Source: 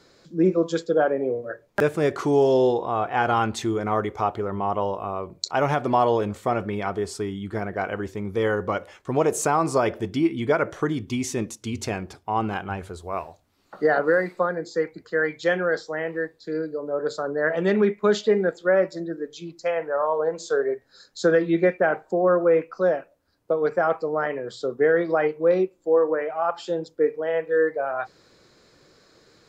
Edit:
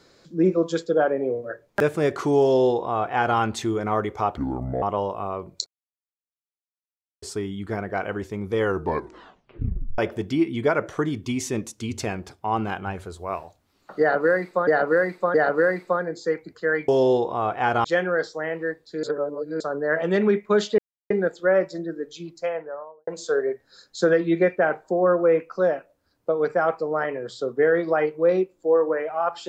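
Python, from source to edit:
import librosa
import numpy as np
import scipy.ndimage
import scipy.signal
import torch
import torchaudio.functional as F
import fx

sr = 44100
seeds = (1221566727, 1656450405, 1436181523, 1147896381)

y = fx.studio_fade_out(x, sr, start_s=19.47, length_s=0.82)
y = fx.edit(y, sr, fx.duplicate(start_s=2.42, length_s=0.96, to_s=15.38),
    fx.speed_span(start_s=4.37, length_s=0.29, speed=0.64),
    fx.silence(start_s=5.5, length_s=1.56),
    fx.tape_stop(start_s=8.46, length_s=1.36),
    fx.repeat(start_s=13.84, length_s=0.67, count=3),
    fx.reverse_span(start_s=16.57, length_s=0.57),
    fx.insert_silence(at_s=18.32, length_s=0.32), tone=tone)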